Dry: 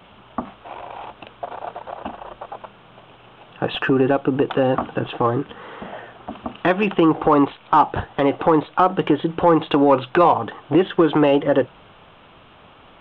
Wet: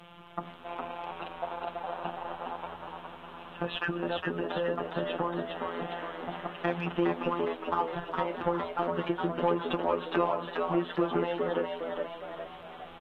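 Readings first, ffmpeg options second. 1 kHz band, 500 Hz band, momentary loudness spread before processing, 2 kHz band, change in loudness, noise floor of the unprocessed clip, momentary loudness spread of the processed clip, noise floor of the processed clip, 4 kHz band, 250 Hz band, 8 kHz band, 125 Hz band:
-12.5 dB, -11.5 dB, 19 LU, -9.0 dB, -14.0 dB, -48 dBFS, 12 LU, -48 dBFS, -8.5 dB, -14.0 dB, n/a, -12.0 dB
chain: -filter_complex "[0:a]acompressor=threshold=-28dB:ratio=2.5,acrusher=bits=11:mix=0:aa=0.000001,afftfilt=real='hypot(re,im)*cos(PI*b)':imag='0':win_size=1024:overlap=0.75,asplit=2[a][b];[b]asplit=7[c][d][e][f][g][h][i];[c]adelay=411,afreqshift=76,volume=-4.5dB[j];[d]adelay=822,afreqshift=152,volume=-10.3dB[k];[e]adelay=1233,afreqshift=228,volume=-16.2dB[l];[f]adelay=1644,afreqshift=304,volume=-22dB[m];[g]adelay=2055,afreqshift=380,volume=-27.9dB[n];[h]adelay=2466,afreqshift=456,volume=-33.7dB[o];[i]adelay=2877,afreqshift=532,volume=-39.6dB[p];[j][k][l][m][n][o][p]amix=inputs=7:normalize=0[q];[a][q]amix=inputs=2:normalize=0,volume=-1dB" -ar 32000 -c:a aac -b:a 48k

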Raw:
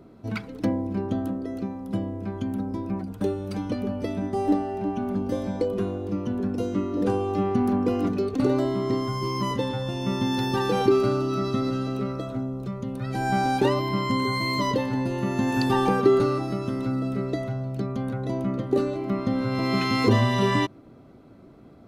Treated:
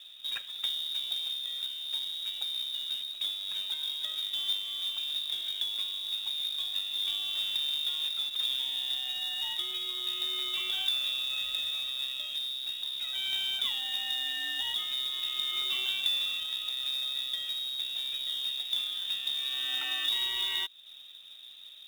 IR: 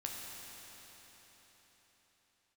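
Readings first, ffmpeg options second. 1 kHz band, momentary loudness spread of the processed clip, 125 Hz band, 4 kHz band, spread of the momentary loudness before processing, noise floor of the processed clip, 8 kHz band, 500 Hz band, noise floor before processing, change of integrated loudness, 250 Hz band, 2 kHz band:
-22.5 dB, 4 LU, under -40 dB, +11.5 dB, 9 LU, -49 dBFS, 0.0 dB, -34.5 dB, -49 dBFS, -4.5 dB, under -35 dB, -6.0 dB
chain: -af "acompressor=threshold=-37dB:ratio=2,lowpass=f=3.3k:t=q:w=0.5098,lowpass=f=3.3k:t=q:w=0.6013,lowpass=f=3.3k:t=q:w=0.9,lowpass=f=3.3k:t=q:w=2.563,afreqshift=-3900,acrusher=bits=3:mode=log:mix=0:aa=0.000001"

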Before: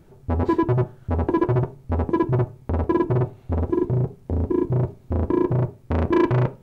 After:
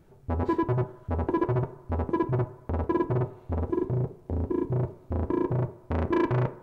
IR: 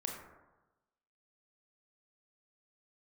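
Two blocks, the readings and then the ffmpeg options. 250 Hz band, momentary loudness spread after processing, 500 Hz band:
-6.0 dB, 6 LU, -5.5 dB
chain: -filter_complex "[0:a]asplit=2[a][b];[b]highpass=390,lowpass=2.7k[c];[1:a]atrim=start_sample=2205[d];[c][d]afir=irnorm=-1:irlink=0,volume=-10.5dB[e];[a][e]amix=inputs=2:normalize=0,volume=-6dB"

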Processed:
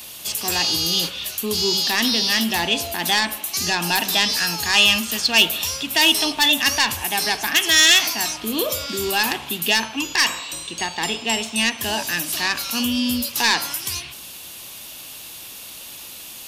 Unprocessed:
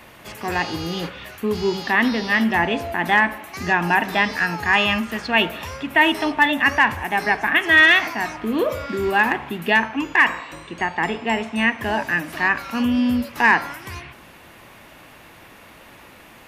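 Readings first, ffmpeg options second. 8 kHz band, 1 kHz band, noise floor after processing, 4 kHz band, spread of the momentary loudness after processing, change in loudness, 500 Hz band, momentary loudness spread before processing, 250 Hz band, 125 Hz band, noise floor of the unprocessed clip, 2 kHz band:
+19.5 dB, -5.0 dB, -38 dBFS, +10.5 dB, 19 LU, +0.5 dB, -4.0 dB, 10 LU, -4.0 dB, -3.5 dB, -46 dBFS, -4.0 dB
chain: -af "acontrast=89,aexciter=amount=8.2:drive=6:freq=2.9k,volume=-10.5dB"

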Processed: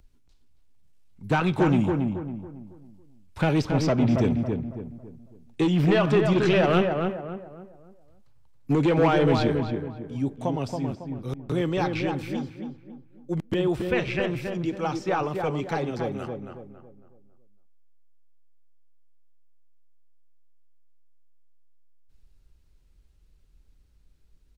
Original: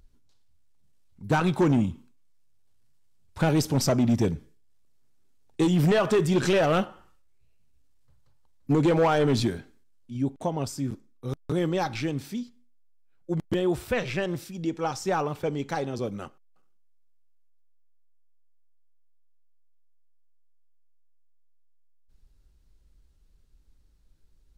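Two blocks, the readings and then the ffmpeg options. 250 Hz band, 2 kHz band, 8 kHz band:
+2.0 dB, +2.5 dB, n/a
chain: -filter_complex "[0:a]equalizer=f=2.5k:w=2:g=4,acrossover=split=390|580|4800[a][b][c][d];[d]acompressor=threshold=-56dB:ratio=6[e];[a][b][c][e]amix=inputs=4:normalize=0,asplit=2[f][g];[g]adelay=276,lowpass=f=1.5k:p=1,volume=-4dB,asplit=2[h][i];[i]adelay=276,lowpass=f=1.5k:p=1,volume=0.39,asplit=2[j][k];[k]adelay=276,lowpass=f=1.5k:p=1,volume=0.39,asplit=2[l][m];[m]adelay=276,lowpass=f=1.5k:p=1,volume=0.39,asplit=2[n][o];[o]adelay=276,lowpass=f=1.5k:p=1,volume=0.39[p];[f][h][j][l][n][p]amix=inputs=6:normalize=0"

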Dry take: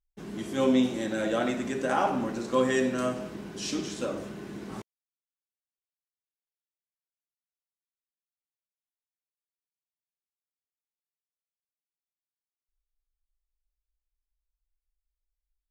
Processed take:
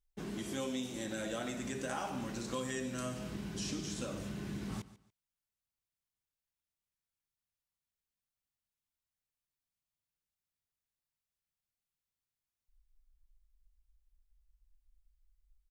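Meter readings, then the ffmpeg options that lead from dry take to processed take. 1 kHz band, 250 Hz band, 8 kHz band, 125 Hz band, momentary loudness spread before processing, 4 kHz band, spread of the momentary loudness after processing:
-12.5 dB, -10.5 dB, -2.5 dB, -3.0 dB, 15 LU, -6.0 dB, 4 LU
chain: -filter_complex "[0:a]asubboost=boost=4.5:cutoff=170,acrossover=split=2200|5300[a][b][c];[a]acompressor=threshold=-40dB:ratio=4[d];[b]acompressor=threshold=-52dB:ratio=4[e];[c]acompressor=threshold=-46dB:ratio=4[f];[d][e][f]amix=inputs=3:normalize=0,asplit=2[g][h];[h]aecho=0:1:143|286:0.133|0.032[i];[g][i]amix=inputs=2:normalize=0,volume=1dB"

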